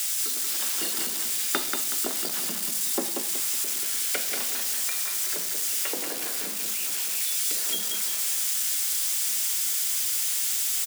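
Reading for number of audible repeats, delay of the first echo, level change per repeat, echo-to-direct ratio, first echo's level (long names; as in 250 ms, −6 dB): 3, 186 ms, −9.0 dB, −4.5 dB, −5.0 dB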